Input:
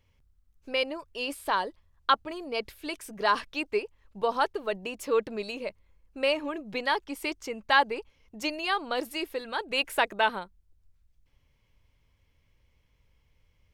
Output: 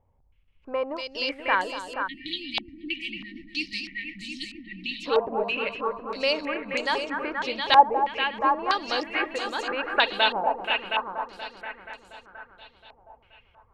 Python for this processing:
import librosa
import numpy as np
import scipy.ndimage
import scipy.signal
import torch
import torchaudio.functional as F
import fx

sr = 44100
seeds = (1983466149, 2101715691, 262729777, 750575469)

y = fx.echo_heads(x, sr, ms=239, heads='all three', feedback_pct=52, wet_db=-10.5)
y = fx.spec_erase(y, sr, start_s=2.07, length_s=2.99, low_hz=350.0, high_hz=1800.0)
y = fx.filter_held_lowpass(y, sr, hz=3.1, low_hz=800.0, high_hz=7000.0)